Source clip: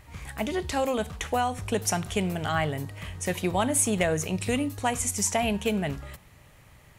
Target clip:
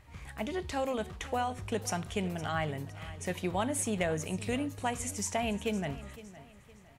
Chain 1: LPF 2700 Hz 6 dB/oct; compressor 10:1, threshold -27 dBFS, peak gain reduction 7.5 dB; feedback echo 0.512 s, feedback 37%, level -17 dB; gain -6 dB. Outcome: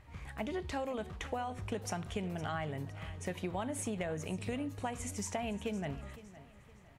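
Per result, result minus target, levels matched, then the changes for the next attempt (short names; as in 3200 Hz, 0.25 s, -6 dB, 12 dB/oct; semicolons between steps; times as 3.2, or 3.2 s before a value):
compressor: peak gain reduction +7.5 dB; 8000 Hz band -2.0 dB
remove: compressor 10:1, threshold -27 dBFS, peak gain reduction 7.5 dB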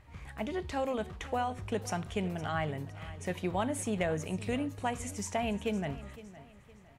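8000 Hz band -5.0 dB
change: LPF 6300 Hz 6 dB/oct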